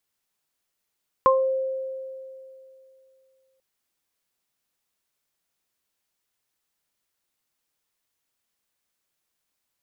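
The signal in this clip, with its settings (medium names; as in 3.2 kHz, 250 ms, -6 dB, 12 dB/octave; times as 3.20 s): additive tone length 2.34 s, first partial 528 Hz, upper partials 5.5 dB, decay 2.74 s, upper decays 0.27 s, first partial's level -16 dB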